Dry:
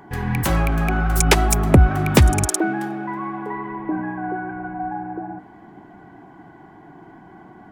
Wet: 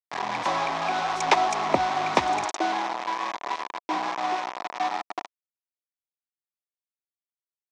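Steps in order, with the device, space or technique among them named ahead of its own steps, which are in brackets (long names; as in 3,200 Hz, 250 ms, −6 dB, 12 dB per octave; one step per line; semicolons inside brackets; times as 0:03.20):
0:03.94–0:05.01: low-shelf EQ 120 Hz +6.5 dB
hand-held game console (bit reduction 4 bits; loudspeaker in its box 440–5,400 Hz, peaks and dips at 450 Hz −4 dB, 710 Hz +6 dB, 1,000 Hz +9 dB, 1,500 Hz −5 dB, 2,900 Hz −4 dB, 4,600 Hz −4 dB)
level −4 dB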